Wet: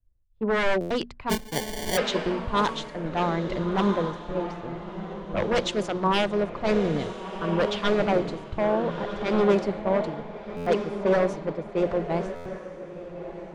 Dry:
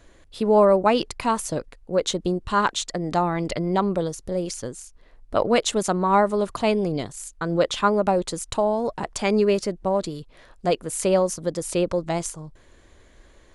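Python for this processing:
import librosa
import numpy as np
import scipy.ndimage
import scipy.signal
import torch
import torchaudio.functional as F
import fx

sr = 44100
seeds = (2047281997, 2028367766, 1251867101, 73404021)

y = 10.0 ** (-16.0 / 20.0) * (np.abs((x / 10.0 ** (-16.0 / 20.0) + 3.0) % 4.0 - 2.0) - 1.0)
y = fx.bass_treble(y, sr, bass_db=2, treble_db=-3)
y = fx.env_lowpass(y, sr, base_hz=1100.0, full_db=-15.5)
y = fx.high_shelf(y, sr, hz=5000.0, db=-4.0)
y = fx.hum_notches(y, sr, base_hz=60, count=4)
y = fx.echo_diffused(y, sr, ms=1340, feedback_pct=44, wet_db=-4.5)
y = fx.sample_hold(y, sr, seeds[0], rate_hz=1300.0, jitter_pct=0, at=(1.29, 1.96), fade=0.02)
y = fx.buffer_glitch(y, sr, at_s=(0.8, 10.56, 12.35), block=512, repeats=8)
y = fx.band_widen(y, sr, depth_pct=100)
y = y * librosa.db_to_amplitude(-2.0)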